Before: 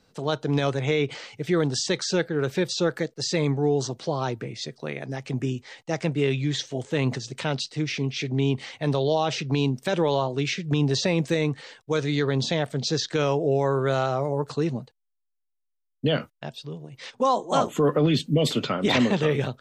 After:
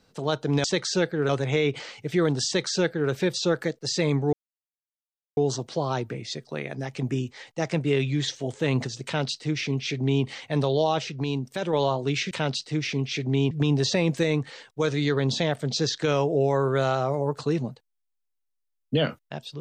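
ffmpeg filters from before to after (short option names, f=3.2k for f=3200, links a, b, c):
-filter_complex "[0:a]asplit=8[a][b][c][d][e][f][g][h];[a]atrim=end=0.642[i];[b]atrim=start=1.808:end=2.462[j];[c]atrim=start=0.638:end=3.68,asetpts=PTS-STARTPTS,afade=t=out:st=3.038:d=0.004:c=hsin,apad=pad_dur=1.04[k];[d]atrim=start=3.68:end=9.302,asetpts=PTS-STARTPTS,afade=t=in:d=0.004:c=hsin[l];[e]atrim=start=9.298:end=10.042,asetpts=PTS-STARTPTS,volume=-4.5dB[m];[f]atrim=start=10.038:end=10.622[n];[g]atrim=start=7.358:end=8.562[o];[h]atrim=start=10.618[p];[i][j]acrossfade=d=0.004:c1=hsin:c2=hsin[q];[k][l]concat=n=2:v=0:a=1[r];[q][r]acrossfade=d=0.004:c1=hsin:c2=hsin[s];[s][m]acrossfade=d=0.004:c1=hsin:c2=hsin[t];[t][n]acrossfade=d=0.004:c1=hsin:c2=hsin[u];[u][o]acrossfade=d=0.004:c1=hsin:c2=hsin[v];[v][p]acrossfade=d=0.004:c1=hsin:c2=hsin"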